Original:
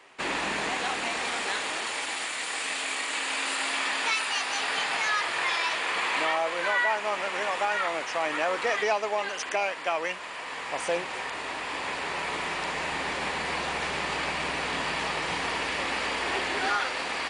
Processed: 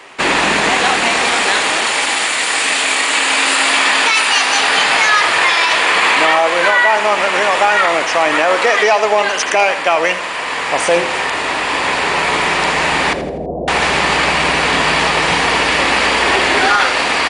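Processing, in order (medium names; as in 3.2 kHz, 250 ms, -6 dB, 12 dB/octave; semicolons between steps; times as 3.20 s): 8.48–9.05 s: peaking EQ 98 Hz -13.5 dB 1.2 oct; 13.13–13.68 s: Chebyshev low-pass 680 Hz, order 5; feedback delay 82 ms, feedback 42%, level -13 dB; loudness maximiser +17.5 dB; trim -1.5 dB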